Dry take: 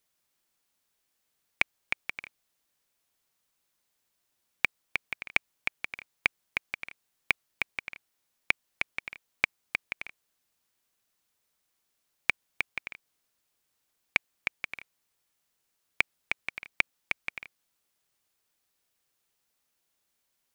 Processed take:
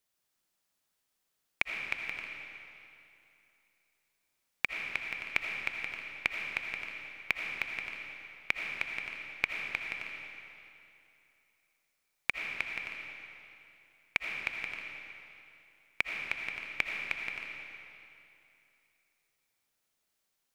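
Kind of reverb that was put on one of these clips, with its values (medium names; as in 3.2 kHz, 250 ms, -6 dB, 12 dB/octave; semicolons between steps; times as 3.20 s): algorithmic reverb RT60 2.8 s, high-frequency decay 0.9×, pre-delay 40 ms, DRR 1 dB; trim -4.5 dB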